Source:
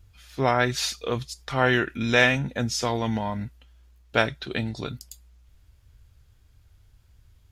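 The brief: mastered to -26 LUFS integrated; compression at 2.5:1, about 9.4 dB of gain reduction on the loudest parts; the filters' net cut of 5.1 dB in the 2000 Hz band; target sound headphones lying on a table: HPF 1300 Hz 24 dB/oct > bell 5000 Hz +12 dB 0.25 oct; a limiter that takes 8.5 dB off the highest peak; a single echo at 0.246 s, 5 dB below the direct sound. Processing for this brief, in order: bell 2000 Hz -6 dB; compressor 2.5:1, threshold -31 dBFS; limiter -25 dBFS; HPF 1300 Hz 24 dB/oct; bell 5000 Hz +12 dB 0.25 oct; echo 0.246 s -5 dB; gain +8.5 dB

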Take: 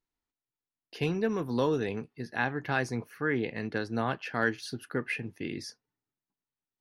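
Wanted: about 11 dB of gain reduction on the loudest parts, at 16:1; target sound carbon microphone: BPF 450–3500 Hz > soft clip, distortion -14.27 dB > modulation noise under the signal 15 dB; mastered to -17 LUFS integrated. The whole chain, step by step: compressor 16:1, threshold -33 dBFS; BPF 450–3500 Hz; soft clip -33 dBFS; modulation noise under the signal 15 dB; gain +27.5 dB

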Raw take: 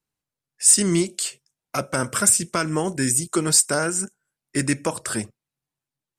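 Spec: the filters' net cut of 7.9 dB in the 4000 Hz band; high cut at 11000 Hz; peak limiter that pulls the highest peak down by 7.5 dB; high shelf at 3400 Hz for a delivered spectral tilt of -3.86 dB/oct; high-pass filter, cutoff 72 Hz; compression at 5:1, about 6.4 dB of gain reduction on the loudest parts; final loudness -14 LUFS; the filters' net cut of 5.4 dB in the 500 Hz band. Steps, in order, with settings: HPF 72 Hz; LPF 11000 Hz; bell 500 Hz -7.5 dB; high shelf 3400 Hz -7 dB; bell 4000 Hz -4.5 dB; compressor 5:1, threshold -26 dBFS; gain +19 dB; limiter -2.5 dBFS

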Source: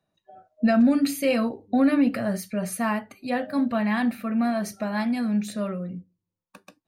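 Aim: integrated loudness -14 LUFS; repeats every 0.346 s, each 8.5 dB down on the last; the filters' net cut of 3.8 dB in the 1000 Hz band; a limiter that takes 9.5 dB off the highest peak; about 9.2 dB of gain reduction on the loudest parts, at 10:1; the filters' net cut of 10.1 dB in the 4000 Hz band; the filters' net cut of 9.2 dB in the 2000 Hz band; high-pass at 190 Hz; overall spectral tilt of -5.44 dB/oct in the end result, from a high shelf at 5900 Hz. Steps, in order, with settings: HPF 190 Hz; bell 1000 Hz -3.5 dB; bell 2000 Hz -8 dB; bell 4000 Hz -7 dB; high shelf 5900 Hz -8 dB; compressor 10:1, threshold -26 dBFS; limiter -29 dBFS; feedback echo 0.346 s, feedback 38%, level -8.5 dB; gain +22 dB

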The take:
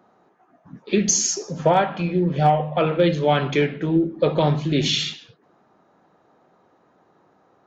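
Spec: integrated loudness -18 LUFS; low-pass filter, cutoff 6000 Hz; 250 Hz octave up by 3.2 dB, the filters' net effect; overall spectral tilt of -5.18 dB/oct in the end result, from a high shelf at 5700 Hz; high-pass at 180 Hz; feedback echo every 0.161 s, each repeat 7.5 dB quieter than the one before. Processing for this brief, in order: HPF 180 Hz; LPF 6000 Hz; bell 250 Hz +7 dB; high shelf 5700 Hz -3.5 dB; feedback echo 0.161 s, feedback 42%, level -7.5 dB; gain +1 dB

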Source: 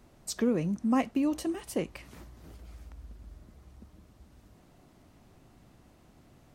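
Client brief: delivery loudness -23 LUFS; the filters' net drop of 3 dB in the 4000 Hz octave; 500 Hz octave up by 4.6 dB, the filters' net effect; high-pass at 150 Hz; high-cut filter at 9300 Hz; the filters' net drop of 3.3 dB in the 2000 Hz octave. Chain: HPF 150 Hz; LPF 9300 Hz; bell 500 Hz +5.5 dB; bell 2000 Hz -3.5 dB; bell 4000 Hz -3 dB; gain +6 dB

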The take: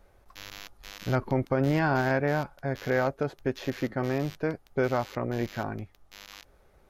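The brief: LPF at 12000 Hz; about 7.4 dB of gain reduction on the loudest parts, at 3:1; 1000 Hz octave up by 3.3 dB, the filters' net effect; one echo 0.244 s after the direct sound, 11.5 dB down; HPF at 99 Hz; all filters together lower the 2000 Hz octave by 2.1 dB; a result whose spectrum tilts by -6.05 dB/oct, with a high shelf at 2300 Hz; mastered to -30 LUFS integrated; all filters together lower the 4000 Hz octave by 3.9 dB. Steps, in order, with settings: HPF 99 Hz; LPF 12000 Hz; bell 1000 Hz +5.5 dB; bell 2000 Hz -7 dB; high shelf 2300 Hz +5.5 dB; bell 4000 Hz -8.5 dB; compressor 3:1, threshold -30 dBFS; echo 0.244 s -11.5 dB; gain +4.5 dB

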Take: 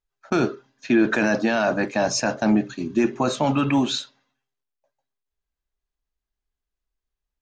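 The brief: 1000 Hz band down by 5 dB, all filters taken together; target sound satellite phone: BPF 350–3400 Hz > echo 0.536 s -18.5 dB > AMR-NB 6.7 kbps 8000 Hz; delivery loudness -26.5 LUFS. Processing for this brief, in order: BPF 350–3400 Hz; bell 1000 Hz -7 dB; echo 0.536 s -18.5 dB; gain +1.5 dB; AMR-NB 6.7 kbps 8000 Hz

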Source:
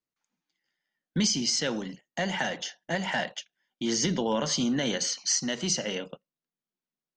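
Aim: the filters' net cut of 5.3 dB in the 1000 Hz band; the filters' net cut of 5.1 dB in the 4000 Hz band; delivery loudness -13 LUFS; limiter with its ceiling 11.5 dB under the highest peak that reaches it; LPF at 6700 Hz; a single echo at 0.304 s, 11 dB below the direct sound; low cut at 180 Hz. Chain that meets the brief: HPF 180 Hz; LPF 6700 Hz; bell 1000 Hz -7 dB; bell 4000 Hz -6 dB; limiter -29.5 dBFS; echo 0.304 s -11 dB; gain +25 dB

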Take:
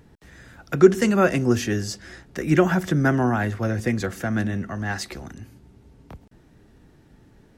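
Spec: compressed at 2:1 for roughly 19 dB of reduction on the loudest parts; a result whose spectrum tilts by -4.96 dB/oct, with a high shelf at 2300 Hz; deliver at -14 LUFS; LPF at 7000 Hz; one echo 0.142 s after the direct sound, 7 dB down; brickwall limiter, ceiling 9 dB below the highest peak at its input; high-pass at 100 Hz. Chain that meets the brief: HPF 100 Hz; LPF 7000 Hz; high shelf 2300 Hz +6.5 dB; compressor 2:1, threshold -43 dBFS; limiter -28.5 dBFS; echo 0.142 s -7 dB; gain +24 dB

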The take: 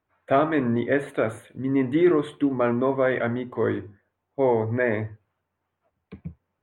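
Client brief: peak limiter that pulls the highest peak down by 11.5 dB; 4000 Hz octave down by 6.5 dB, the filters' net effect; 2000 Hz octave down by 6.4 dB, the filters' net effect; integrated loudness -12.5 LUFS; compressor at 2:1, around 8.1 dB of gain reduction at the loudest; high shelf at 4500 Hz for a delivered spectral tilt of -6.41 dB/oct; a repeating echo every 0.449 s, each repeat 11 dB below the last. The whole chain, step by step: bell 2000 Hz -7.5 dB; bell 4000 Hz -8.5 dB; high shelf 4500 Hz +7 dB; compressor 2:1, threshold -29 dBFS; limiter -27 dBFS; feedback echo 0.449 s, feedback 28%, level -11 dB; gain +24 dB

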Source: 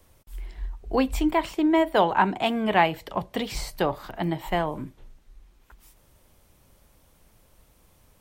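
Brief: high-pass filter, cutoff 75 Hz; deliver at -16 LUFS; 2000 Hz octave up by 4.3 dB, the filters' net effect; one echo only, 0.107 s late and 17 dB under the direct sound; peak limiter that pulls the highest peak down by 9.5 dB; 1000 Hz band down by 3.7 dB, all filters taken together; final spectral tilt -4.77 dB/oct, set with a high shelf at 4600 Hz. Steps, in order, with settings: HPF 75 Hz; bell 1000 Hz -6 dB; bell 2000 Hz +6.5 dB; high shelf 4600 Hz +3 dB; limiter -14.5 dBFS; echo 0.107 s -17 dB; gain +11.5 dB

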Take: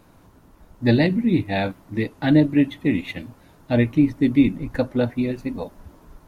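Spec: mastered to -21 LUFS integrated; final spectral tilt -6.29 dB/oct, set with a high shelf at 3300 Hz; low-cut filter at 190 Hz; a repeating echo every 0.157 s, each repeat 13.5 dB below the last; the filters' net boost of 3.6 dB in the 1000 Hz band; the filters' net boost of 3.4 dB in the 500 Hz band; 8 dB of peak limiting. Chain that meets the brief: HPF 190 Hz; bell 500 Hz +3.5 dB; bell 1000 Hz +4 dB; high shelf 3300 Hz -6.5 dB; limiter -11.5 dBFS; feedback echo 0.157 s, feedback 21%, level -13.5 dB; gain +2.5 dB

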